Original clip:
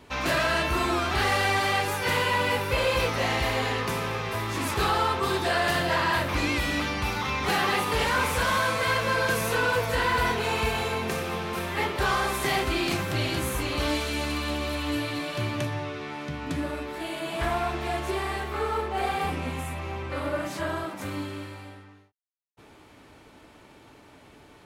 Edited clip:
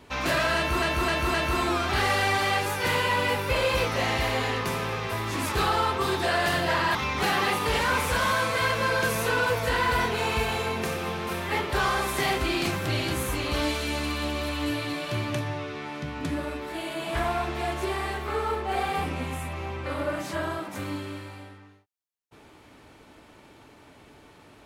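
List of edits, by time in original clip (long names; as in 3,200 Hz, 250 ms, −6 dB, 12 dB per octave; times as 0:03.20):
0:00.56–0:00.82: repeat, 4 plays
0:06.17–0:07.21: remove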